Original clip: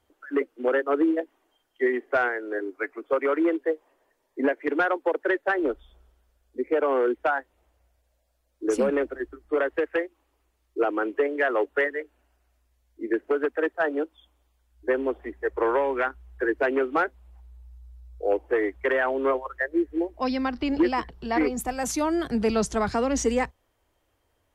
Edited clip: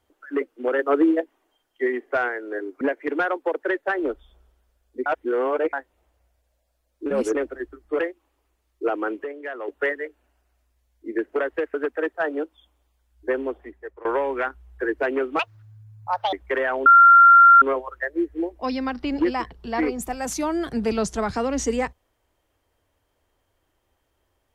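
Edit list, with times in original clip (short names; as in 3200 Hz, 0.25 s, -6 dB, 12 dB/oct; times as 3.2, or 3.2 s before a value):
0.79–1.21 gain +4 dB
2.81–4.41 cut
6.66–7.33 reverse
8.66–8.95 reverse
9.59–9.94 move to 13.34
11.19–11.63 gain -9 dB
14.97–15.65 fade out linear, to -21.5 dB
16.99–18.67 speed 179%
19.2 add tone 1380 Hz -7.5 dBFS 0.76 s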